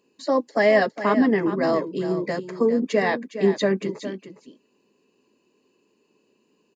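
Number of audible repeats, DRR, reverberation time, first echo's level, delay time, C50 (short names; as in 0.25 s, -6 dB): 1, none, none, -11.5 dB, 0.411 s, none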